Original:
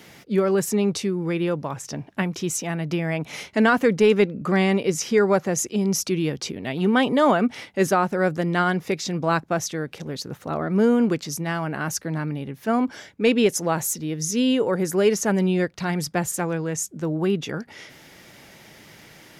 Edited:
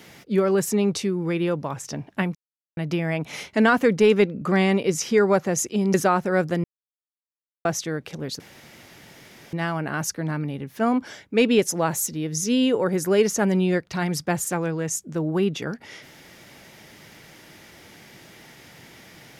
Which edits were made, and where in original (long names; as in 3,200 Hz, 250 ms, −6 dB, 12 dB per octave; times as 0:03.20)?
0:02.35–0:02.77: silence
0:05.94–0:07.81: remove
0:08.51–0:09.52: silence
0:10.27–0:11.40: fill with room tone